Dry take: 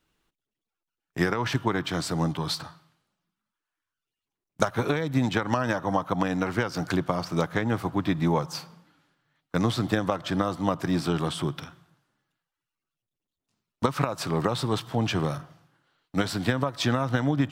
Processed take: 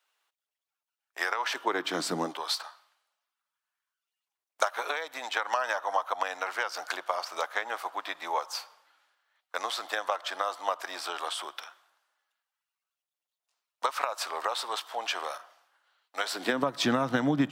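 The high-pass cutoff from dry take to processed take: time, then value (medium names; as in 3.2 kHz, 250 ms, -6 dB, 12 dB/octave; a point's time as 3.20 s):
high-pass 24 dB/octave
1.42 s 620 Hz
2.12 s 200 Hz
2.47 s 620 Hz
16.21 s 620 Hz
16.69 s 170 Hz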